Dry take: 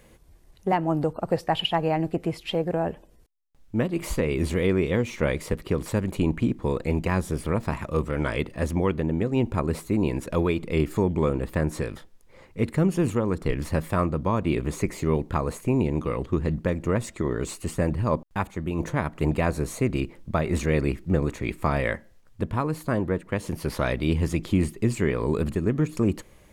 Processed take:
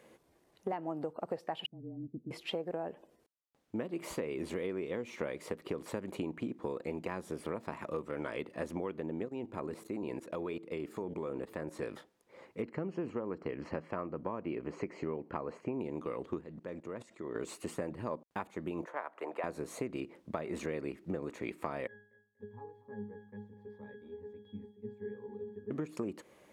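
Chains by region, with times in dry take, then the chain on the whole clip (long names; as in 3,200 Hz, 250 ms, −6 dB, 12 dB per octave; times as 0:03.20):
0:01.66–0:02.31: frequency shifter −28 Hz + transistor ladder low-pass 260 Hz, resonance 45%
0:09.25–0:11.83: hum removal 109.8 Hz, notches 5 + output level in coarse steps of 15 dB
0:12.62–0:15.81: Butterworth band-reject 3,600 Hz, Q 4.7 + high-frequency loss of the air 160 metres
0:16.41–0:17.35: low-pass filter 9,800 Hz + output level in coarse steps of 18 dB
0:18.85–0:19.44: high-pass filter 270 Hz + three-way crossover with the lows and the highs turned down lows −20 dB, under 500 Hz, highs −13 dB, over 2,100 Hz
0:21.87–0:25.71: resonances in every octave G#, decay 0.44 s + repeating echo 239 ms, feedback 32%, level −17 dB
whole clip: high-pass filter 340 Hz 12 dB per octave; spectral tilt −2 dB per octave; downward compressor, threshold −31 dBFS; level −3 dB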